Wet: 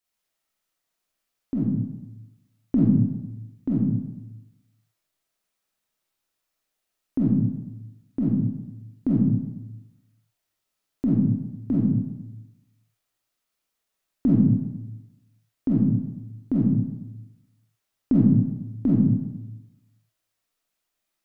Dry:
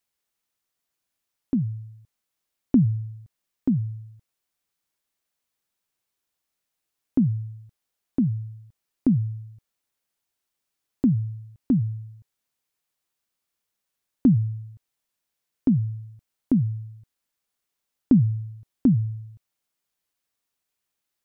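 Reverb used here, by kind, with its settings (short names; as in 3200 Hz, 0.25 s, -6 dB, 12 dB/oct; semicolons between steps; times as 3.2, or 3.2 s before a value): digital reverb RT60 0.99 s, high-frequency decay 0.65×, pre-delay 5 ms, DRR -7 dB; gain -4.5 dB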